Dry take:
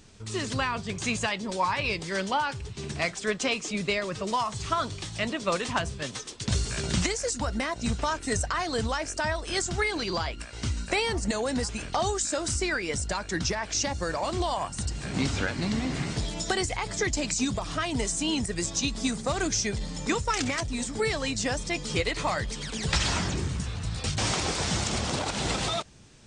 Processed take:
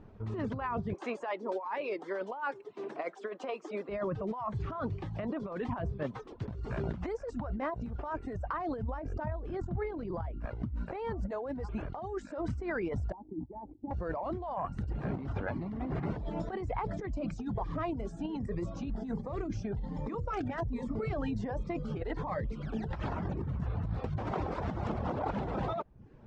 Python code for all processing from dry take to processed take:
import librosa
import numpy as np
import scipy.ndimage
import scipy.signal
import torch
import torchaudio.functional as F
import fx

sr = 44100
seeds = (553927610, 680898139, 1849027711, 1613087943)

y = fx.chain(x, sr, fx.highpass(hz=320.0, slope=24),
    fx.high_shelf(hz=7800.0, db=10.5), at=(0.94, 3.89))
y = fx.chain(y, sr, fx.low_shelf(hz=460.0, db=10.5),
    fx.over_compress(threshold_db=-28.0, ratio=-1.0), at=(8.82, 10.76))
y = fx.chain(y, sr, fx.over_compress(threshold_db=-31.0, ratio=-0.5),
    fx.formant_cascade(vowel='u'), at=(13.12, 13.91))
y = fx.chain(y, sr, fx.hum_notches(base_hz=60, count=9),
    fx.notch_cascade(direction='rising', hz=1.3), at=(17.11, 22.94))
y = scipy.signal.sosfilt(scipy.signal.cheby1(2, 1.0, 900.0, 'lowpass', fs=sr, output='sos'), y)
y = fx.dereverb_blind(y, sr, rt60_s=0.51)
y = fx.over_compress(y, sr, threshold_db=-35.0, ratio=-1.0)